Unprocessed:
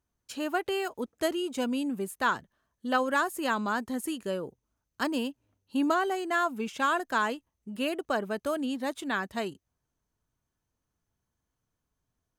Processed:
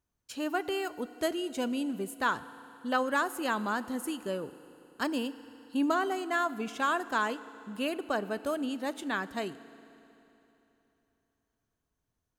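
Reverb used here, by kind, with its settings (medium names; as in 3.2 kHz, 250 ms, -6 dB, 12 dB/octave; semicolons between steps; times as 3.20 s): FDN reverb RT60 3.3 s, high-frequency decay 0.95×, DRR 14.5 dB; trim -2 dB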